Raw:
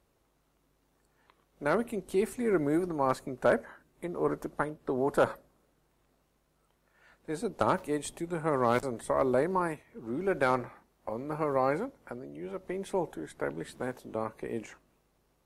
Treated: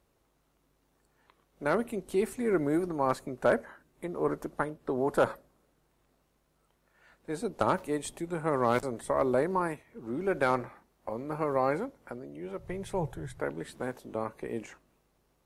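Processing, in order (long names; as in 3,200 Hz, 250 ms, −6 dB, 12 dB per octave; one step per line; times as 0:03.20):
0:12.59–0:13.41: low shelf with overshoot 170 Hz +11.5 dB, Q 3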